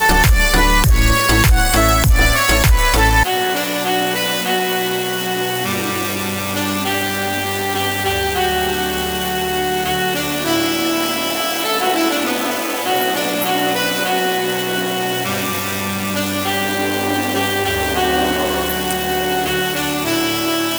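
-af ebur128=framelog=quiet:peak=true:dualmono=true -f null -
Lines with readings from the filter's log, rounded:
Integrated loudness:
  I:         -13.5 LUFS
  Threshold: -23.5 LUFS
Loudness range:
  LRA:         4.7 LU
  Threshold: -33.9 LUFS
  LRA low:   -15.3 LUFS
  LRA high:  -10.6 LUFS
True peak:
  Peak:       -2.3 dBFS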